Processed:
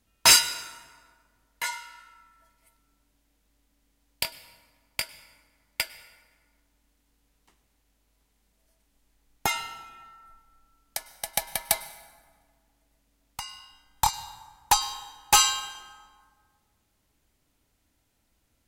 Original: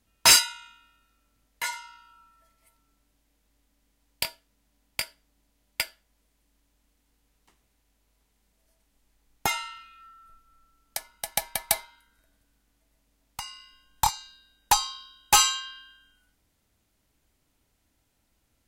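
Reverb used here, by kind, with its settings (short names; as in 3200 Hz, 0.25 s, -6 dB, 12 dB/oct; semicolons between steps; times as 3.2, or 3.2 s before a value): plate-style reverb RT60 1.8 s, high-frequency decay 0.55×, pre-delay 90 ms, DRR 15.5 dB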